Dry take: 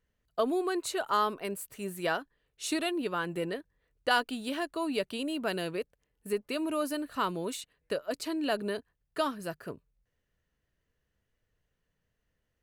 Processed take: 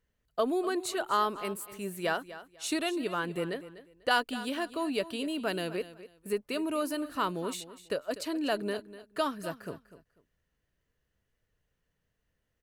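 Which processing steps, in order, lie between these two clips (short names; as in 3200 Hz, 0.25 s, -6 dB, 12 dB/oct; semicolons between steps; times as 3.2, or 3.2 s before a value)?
feedback echo 0.247 s, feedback 23%, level -15 dB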